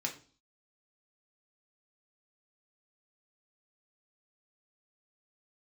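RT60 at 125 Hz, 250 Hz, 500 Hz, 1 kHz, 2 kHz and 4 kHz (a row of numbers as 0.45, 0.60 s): 0.50, 0.50, 0.45, 0.40, 0.35, 0.45 s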